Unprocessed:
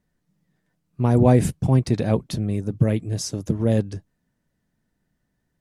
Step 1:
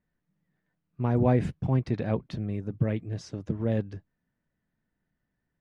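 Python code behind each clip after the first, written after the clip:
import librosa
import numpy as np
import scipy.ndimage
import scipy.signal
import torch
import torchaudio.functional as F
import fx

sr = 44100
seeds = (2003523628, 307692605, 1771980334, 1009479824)

y = scipy.signal.sosfilt(scipy.signal.butter(2, 3300.0, 'lowpass', fs=sr, output='sos'), x)
y = fx.peak_eq(y, sr, hz=1700.0, db=3.5, octaves=1.4)
y = F.gain(torch.from_numpy(y), -7.5).numpy()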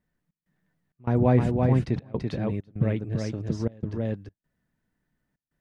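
y = x + 10.0 ** (-4.0 / 20.0) * np.pad(x, (int(335 * sr / 1000.0), 0))[:len(x)]
y = fx.step_gate(y, sr, bpm=98, pattern='xx.xxx.xxxx', floor_db=-24.0, edge_ms=4.5)
y = F.gain(torch.from_numpy(y), 2.0).numpy()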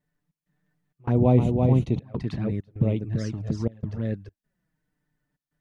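y = fx.env_flanger(x, sr, rest_ms=6.8, full_db=-21.5)
y = F.gain(torch.from_numpy(y), 2.0).numpy()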